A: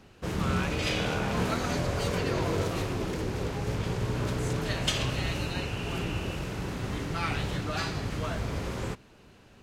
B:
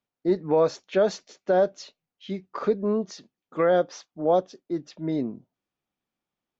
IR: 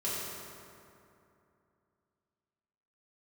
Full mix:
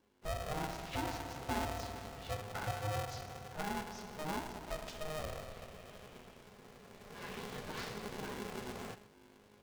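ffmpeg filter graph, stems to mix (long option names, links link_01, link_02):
-filter_complex "[0:a]aeval=exprs='val(0)+0.00355*(sin(2*PI*50*n/s)+sin(2*PI*2*50*n/s)/2+sin(2*PI*3*50*n/s)/3+sin(2*PI*4*50*n/s)/4+sin(2*PI*5*50*n/s)/5)':channel_layout=same,volume=-8.5dB,afade=type=in:start_time=6.96:duration=0.68:silence=0.266073,asplit=2[link_01][link_02];[link_02]volume=-16.5dB[link_03];[1:a]acompressor=threshold=-31dB:ratio=5,volume=-6dB,asplit=2[link_04][link_05];[link_05]volume=-8dB[link_06];[2:a]atrim=start_sample=2205[link_07];[link_06][link_07]afir=irnorm=-1:irlink=0[link_08];[link_03]aecho=0:1:132:1[link_09];[link_01][link_04][link_08][link_09]amix=inputs=4:normalize=0,flanger=delay=8.9:depth=8.3:regen=-22:speed=2:shape=sinusoidal,aeval=exprs='val(0)*sgn(sin(2*PI*310*n/s))':channel_layout=same"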